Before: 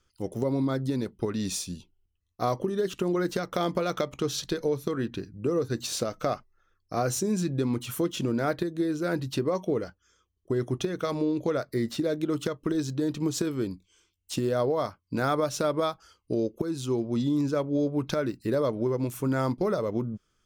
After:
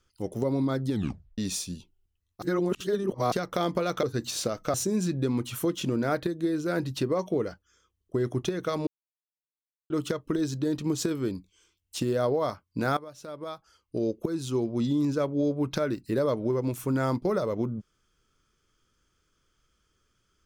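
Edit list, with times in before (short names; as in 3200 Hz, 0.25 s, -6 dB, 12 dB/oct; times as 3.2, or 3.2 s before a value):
0.9 tape stop 0.48 s
2.42–3.32 reverse
4.03–5.59 cut
6.3–7.1 cut
11.23–12.26 mute
15.33–16.46 fade in quadratic, from -17.5 dB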